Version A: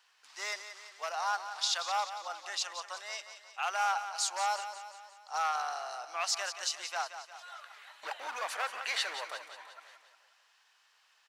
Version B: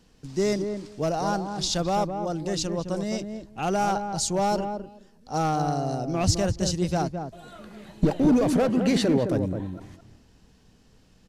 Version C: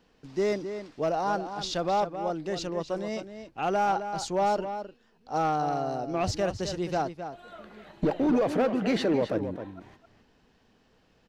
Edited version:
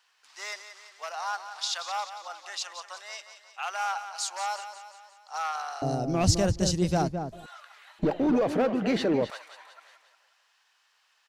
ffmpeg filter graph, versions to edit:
-filter_complex "[0:a]asplit=3[a][b][c];[a]atrim=end=5.822[d];[1:a]atrim=start=5.818:end=7.462[e];[b]atrim=start=7.458:end=7.992[f];[2:a]atrim=start=7.988:end=9.302[g];[c]atrim=start=9.298[h];[d][e]acrossfade=d=0.004:c1=hsin:c2=hsin[i];[i][f]acrossfade=d=0.004:c1=hsin:c2=hsin[j];[j][g]acrossfade=d=0.004:c1=hsin:c2=hsin[k];[k][h]acrossfade=d=0.004:c1=hsin:c2=hsin"

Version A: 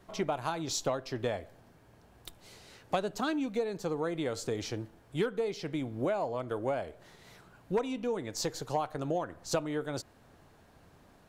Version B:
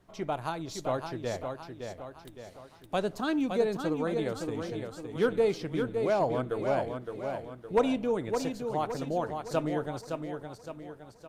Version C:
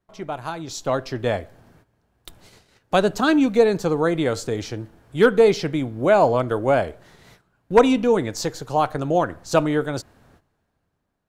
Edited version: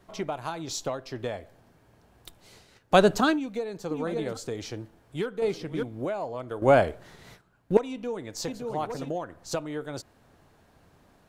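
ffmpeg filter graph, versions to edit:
-filter_complex "[2:a]asplit=2[a][b];[1:a]asplit=3[c][d][e];[0:a]asplit=6[f][g][h][i][j][k];[f]atrim=end=2.74[l];[a]atrim=start=2.5:end=3.4[m];[g]atrim=start=3.16:end=3.912[n];[c]atrim=start=3.908:end=4.372[o];[h]atrim=start=4.368:end=5.422[p];[d]atrim=start=5.418:end=5.832[q];[i]atrim=start=5.828:end=6.622[r];[b]atrim=start=6.618:end=7.772[s];[j]atrim=start=7.768:end=8.482[t];[e]atrim=start=8.478:end=9.102[u];[k]atrim=start=9.098[v];[l][m]acrossfade=d=0.24:c1=tri:c2=tri[w];[w][n]acrossfade=d=0.24:c1=tri:c2=tri[x];[x][o]acrossfade=d=0.004:c1=hsin:c2=hsin[y];[y][p]acrossfade=d=0.004:c1=hsin:c2=hsin[z];[z][q]acrossfade=d=0.004:c1=hsin:c2=hsin[aa];[aa][r]acrossfade=d=0.004:c1=hsin:c2=hsin[ab];[ab][s]acrossfade=d=0.004:c1=hsin:c2=hsin[ac];[ac][t]acrossfade=d=0.004:c1=hsin:c2=hsin[ad];[ad][u]acrossfade=d=0.004:c1=hsin:c2=hsin[ae];[ae][v]acrossfade=d=0.004:c1=hsin:c2=hsin"

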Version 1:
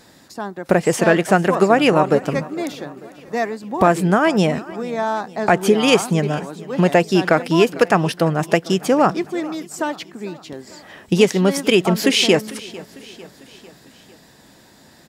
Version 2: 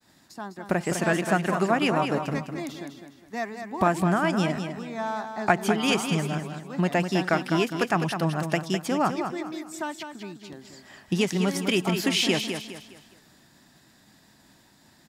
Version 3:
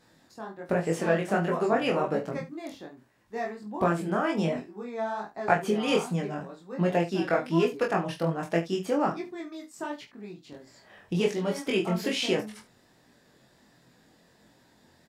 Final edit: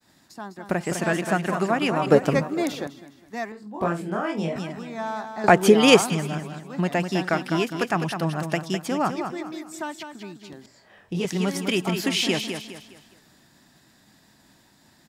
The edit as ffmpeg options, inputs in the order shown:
-filter_complex "[0:a]asplit=2[a][b];[2:a]asplit=2[c][d];[1:a]asplit=5[e][f][g][h][i];[e]atrim=end=2.062[j];[a]atrim=start=2.058:end=2.872[k];[f]atrim=start=2.868:end=3.522[l];[c]atrim=start=3.518:end=4.562[m];[g]atrim=start=4.558:end=5.442[n];[b]atrim=start=5.438:end=6.102[o];[h]atrim=start=6.098:end=10.662[p];[d]atrim=start=10.658:end=11.252[q];[i]atrim=start=11.248[r];[j][k]acrossfade=d=0.004:c1=hsin:c2=hsin[s];[s][l]acrossfade=d=0.004:c1=hsin:c2=hsin[t];[t][m]acrossfade=d=0.004:c1=hsin:c2=hsin[u];[u][n]acrossfade=d=0.004:c1=hsin:c2=hsin[v];[v][o]acrossfade=d=0.004:c1=hsin:c2=hsin[w];[w][p]acrossfade=d=0.004:c1=hsin:c2=hsin[x];[x][q]acrossfade=d=0.004:c1=hsin:c2=hsin[y];[y][r]acrossfade=d=0.004:c1=hsin:c2=hsin"

